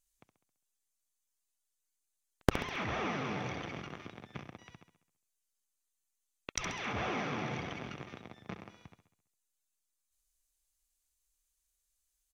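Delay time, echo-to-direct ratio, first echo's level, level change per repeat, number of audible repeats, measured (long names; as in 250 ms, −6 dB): 67 ms, −9.0 dB, −10.5 dB, −5.5 dB, 5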